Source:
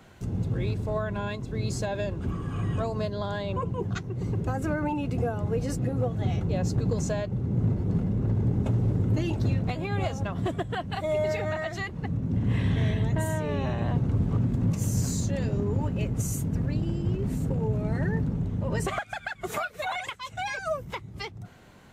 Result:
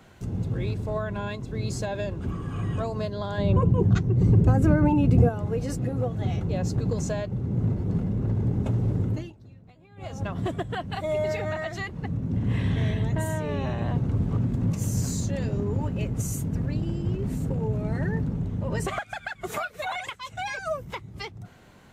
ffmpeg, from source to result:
ffmpeg -i in.wav -filter_complex "[0:a]asettb=1/sr,asplit=3[link_01][link_02][link_03];[link_01]atrim=end=3.384[link_04];[link_02]atrim=start=3.38:end=5.29,asetpts=PTS-STARTPTS,afade=type=in:duration=0.004:curve=qsin,afade=type=out:start_time=1.906:duration=0.004:curve=qsin,lowshelf=frequency=450:gain=12[link_05];[link_03]atrim=start=5.286[link_06];[link_04][link_05]acrossfade=duration=0.004:curve1=hsin:curve2=qsin[link_07];[link_07][link_06]acrossfade=duration=0.004:curve1=qsin:curve2=hsin,asplit=3[link_08][link_09][link_10];[link_08]atrim=end=9.33,asetpts=PTS-STARTPTS,afade=type=out:start_time=9.04:duration=0.29:silence=0.0668344[link_11];[link_09]atrim=start=9.33:end=9.96,asetpts=PTS-STARTPTS,volume=-23.5dB[link_12];[link_10]atrim=start=9.96,asetpts=PTS-STARTPTS,afade=type=in:duration=0.29:silence=0.0668344[link_13];[link_11][link_12][link_13]concat=n=3:v=0:a=1" out.wav

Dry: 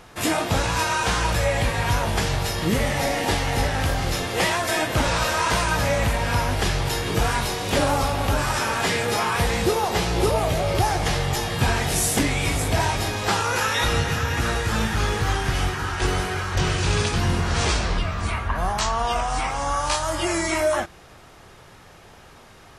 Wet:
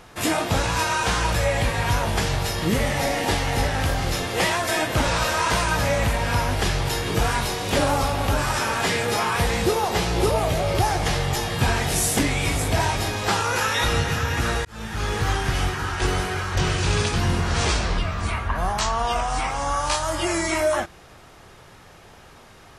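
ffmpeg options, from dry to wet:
ffmpeg -i in.wav -filter_complex "[0:a]asplit=2[link_01][link_02];[link_01]atrim=end=14.65,asetpts=PTS-STARTPTS,afade=type=out:start_time=14.646:duration=0.004:curve=hsin[link_03];[link_02]atrim=start=14.65,asetpts=PTS-STARTPTS,afade=type=in:duration=0.56[link_04];[link_03][link_04]concat=n=2:v=0:a=1" out.wav

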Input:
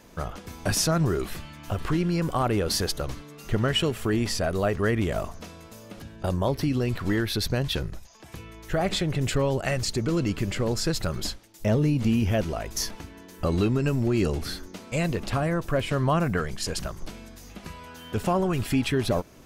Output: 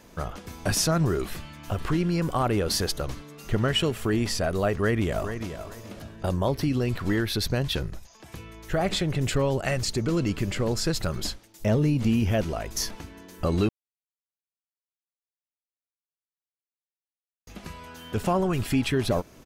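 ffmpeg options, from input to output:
ffmpeg -i in.wav -filter_complex "[0:a]asplit=2[link_01][link_02];[link_02]afade=type=in:start_time=4.75:duration=0.01,afade=type=out:start_time=5.5:duration=0.01,aecho=0:1:430|860|1290:0.334965|0.0837414|0.0209353[link_03];[link_01][link_03]amix=inputs=2:normalize=0,asplit=3[link_04][link_05][link_06];[link_04]atrim=end=13.69,asetpts=PTS-STARTPTS,afade=type=out:start_time=13.686:duration=0.004:curve=hsin[link_07];[link_05]atrim=start=13.69:end=17.47,asetpts=PTS-STARTPTS,volume=0[link_08];[link_06]atrim=start=17.47,asetpts=PTS-STARTPTS,afade=type=in:duration=0.004:curve=hsin[link_09];[link_07][link_08][link_09]concat=n=3:v=0:a=1" out.wav

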